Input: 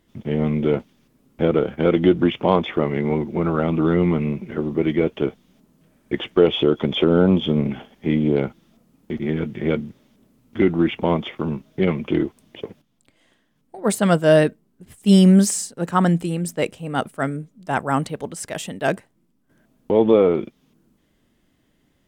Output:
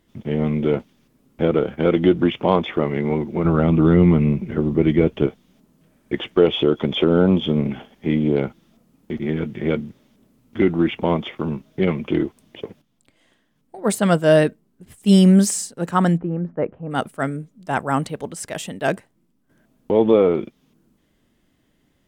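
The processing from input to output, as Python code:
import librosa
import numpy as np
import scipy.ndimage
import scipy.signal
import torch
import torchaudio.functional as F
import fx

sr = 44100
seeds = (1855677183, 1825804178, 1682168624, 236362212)

y = fx.low_shelf(x, sr, hz=190.0, db=11.0, at=(3.45, 5.27))
y = fx.lowpass(y, sr, hz=1500.0, slope=24, at=(16.16, 16.9), fade=0.02)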